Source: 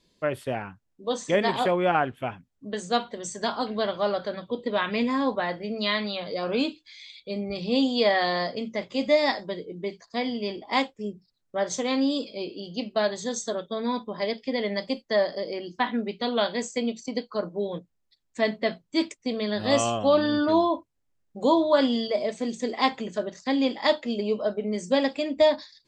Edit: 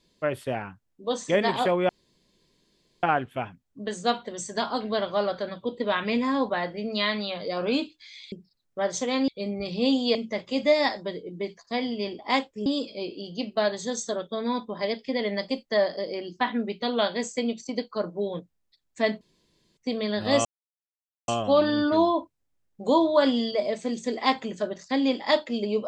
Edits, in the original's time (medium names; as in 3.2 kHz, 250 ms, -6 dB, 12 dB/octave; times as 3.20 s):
1.89 s: insert room tone 1.14 s
8.05–8.58 s: delete
11.09–12.05 s: move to 7.18 s
18.60–19.16 s: room tone
19.84 s: insert silence 0.83 s